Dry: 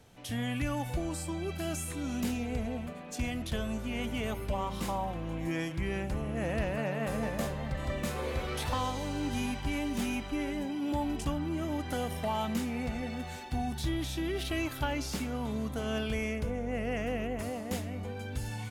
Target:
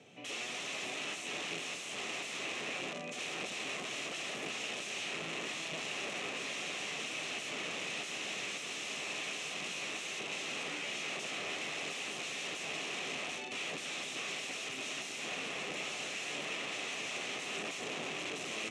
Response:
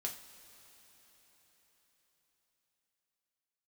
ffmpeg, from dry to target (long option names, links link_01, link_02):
-filter_complex "[0:a]asettb=1/sr,asplit=3[link_01][link_02][link_03];[link_01]atrim=end=8.434[link_04];[link_02]atrim=start=8.43:end=9.46,asetpts=PTS-STARTPTS,afade=type=in:duration=0.004:curve=qsin,afade=type=out:start_time=1.026:duration=0.004:curve=qsin,bandreject=frequency=60:width_type=h:width=6,bandreject=frequency=120:width_type=h:width=6,bandreject=frequency=180:width_type=h:width=6,bandreject=frequency=240:width_type=h:width=6[link_05];[link_03]atrim=start=9.456[link_06];[link_04][link_05]acrossfade=duration=0.004:curve1=hsin:curve2=qsin[link_07];[link_07][link_06]acrossfade=duration=0.004:curve1=qsin:curve2=hsin,aeval=exprs='(mod(70.8*val(0)+1,2)-1)/70.8':channel_layout=same,highpass=frequency=160:width=0.5412,highpass=frequency=160:width=1.3066,equalizer=frequency=220:width_type=q:width=4:gain=-4,equalizer=frequency=940:width_type=q:width=4:gain=-8,equalizer=frequency=1500:width_type=q:width=4:gain=-9,equalizer=frequency=2600:width_type=q:width=4:gain=8,equalizer=frequency=4700:width_type=q:width=4:gain=-9,lowpass=frequency=7100:width=0.5412,lowpass=frequency=7100:width=1.3066,asplit=2[link_08][link_09];[1:a]atrim=start_sample=2205[link_10];[link_09][link_10]afir=irnorm=-1:irlink=0,volume=-3.5dB[link_11];[link_08][link_11]amix=inputs=2:normalize=0"